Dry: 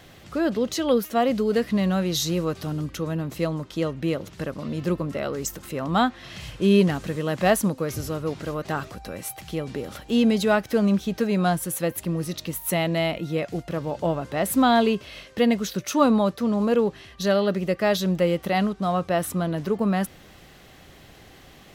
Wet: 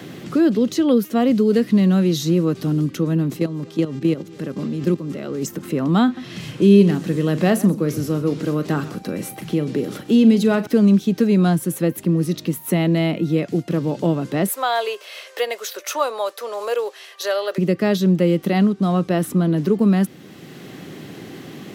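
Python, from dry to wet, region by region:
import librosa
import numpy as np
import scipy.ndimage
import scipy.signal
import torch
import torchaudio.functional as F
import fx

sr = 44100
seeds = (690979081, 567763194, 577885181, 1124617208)

y = fx.echo_single(x, sr, ms=226, db=-21.0, at=(3.36, 5.41), fade=0.02)
y = fx.dmg_buzz(y, sr, base_hz=400.0, harmonics=20, level_db=-47.0, tilt_db=-6, odd_only=False, at=(3.36, 5.41), fade=0.02)
y = fx.level_steps(y, sr, step_db=12, at=(3.36, 5.41), fade=0.02)
y = fx.chain(y, sr, fx.doubler(ms=40.0, db=-13.5),
    fx.echo_single(ms=129, db=-17.5), at=(6.04, 10.67))
y = fx.chain(y, sr, fx.steep_highpass(hz=520.0, slope=36),
    fx.high_shelf(hz=6100.0, db=9.5), at=(14.48, 17.58))
y = scipy.signal.sosfilt(scipy.signal.butter(4, 130.0, 'highpass', fs=sr, output='sos'), y)
y = fx.low_shelf_res(y, sr, hz=470.0, db=7.5, q=1.5)
y = fx.band_squash(y, sr, depth_pct=40)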